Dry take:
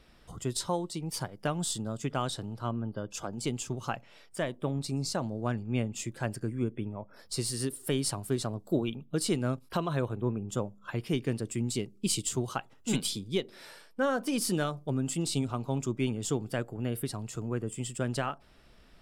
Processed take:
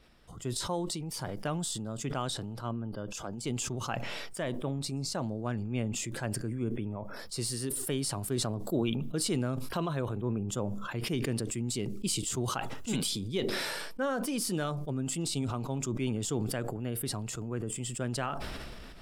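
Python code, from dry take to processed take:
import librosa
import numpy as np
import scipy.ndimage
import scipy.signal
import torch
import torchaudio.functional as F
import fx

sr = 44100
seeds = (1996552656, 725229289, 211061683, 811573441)

y = fx.sustainer(x, sr, db_per_s=22.0)
y = F.gain(torch.from_numpy(y), -3.5).numpy()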